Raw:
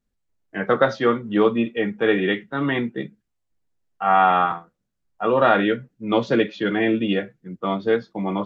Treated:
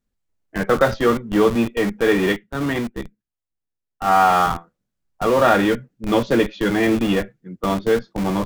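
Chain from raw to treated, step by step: in parallel at -5 dB: Schmitt trigger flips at -24 dBFS; 2.32–4.18 on the sum: upward expander 1.5:1, over -36 dBFS

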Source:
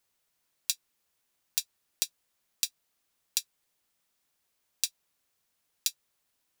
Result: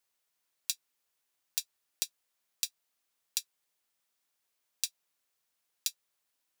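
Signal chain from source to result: low shelf 260 Hz -9 dB; gain -3.5 dB

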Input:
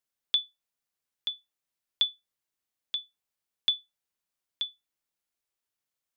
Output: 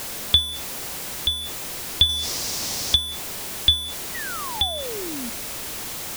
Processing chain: zero-crossing step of -33 dBFS; 2.09–2.96 bell 5300 Hz +12 dB 1 oct; in parallel at -11 dB: sample-and-hold 26×; 4.14–5.3 on the sum: painted sound fall 220–2000 Hz -41 dBFS; gain +8 dB

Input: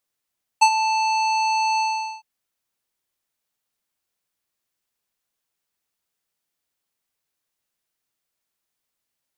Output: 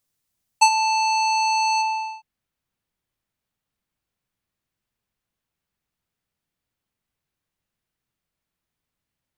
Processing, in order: tone controls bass +12 dB, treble +4 dB, from 1.81 s treble -7 dB

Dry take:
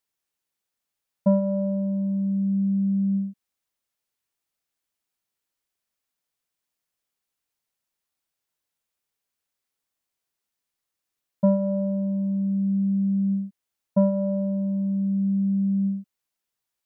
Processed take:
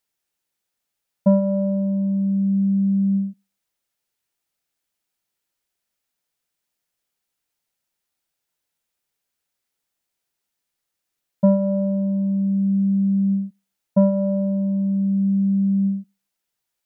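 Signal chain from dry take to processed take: notch 1100 Hz, Q 13; on a send: reverb, pre-delay 6 ms, DRR 20 dB; on the sum: gain +3.5 dB

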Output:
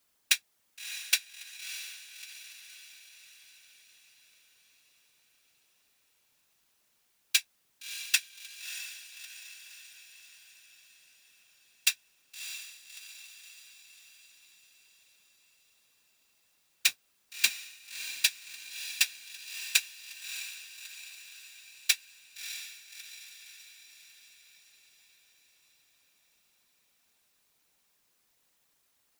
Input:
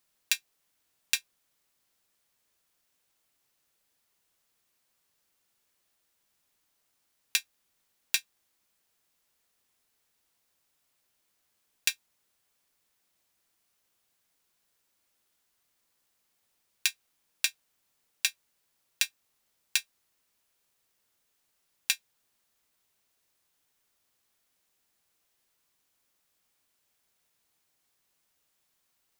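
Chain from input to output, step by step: whisperiser; 16.87–17.49 modulation noise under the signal 16 dB; diffused feedback echo 0.632 s, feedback 55%, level -10 dB; gain +2.5 dB

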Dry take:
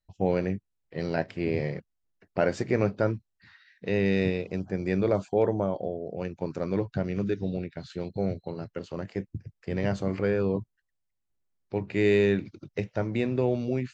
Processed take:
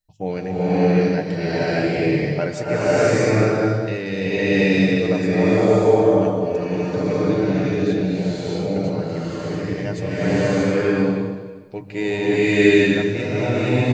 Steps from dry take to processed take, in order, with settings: high shelf 4700 Hz +9 dB; notches 50/100/150/200 Hz; comb 6.6 ms, depth 47%; bloom reverb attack 0.63 s, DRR -11 dB; gain -1.5 dB

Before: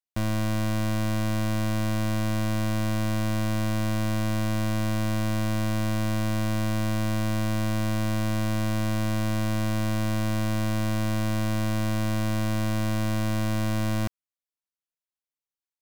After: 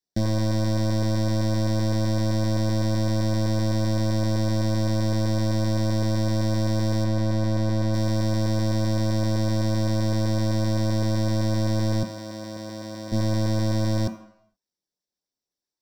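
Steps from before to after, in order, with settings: 7.04–7.94 high shelf 4400 Hz -7.5 dB; 12.03–13.12 Bessel high-pass 250 Hz, order 2; limiter -29 dBFS, peak gain reduction 10.5 dB; LFO notch saw up 7.8 Hz 550–3400 Hz; reverb RT60 0.70 s, pre-delay 3 ms, DRR 5 dB

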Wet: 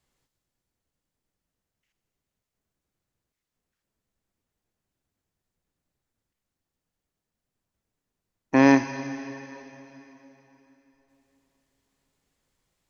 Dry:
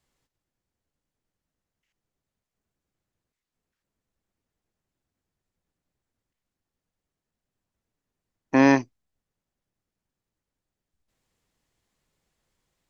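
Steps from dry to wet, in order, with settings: on a send: high shelf 3700 Hz +11 dB + reverb RT60 3.6 s, pre-delay 28 ms, DRR 10 dB

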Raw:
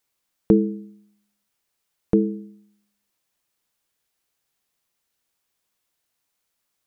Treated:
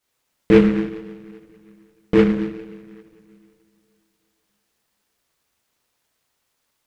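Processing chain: two-slope reverb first 0.97 s, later 2.8 s, from -19 dB, DRR -7 dB; noise-modulated delay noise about 1600 Hz, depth 0.069 ms; gain -2 dB

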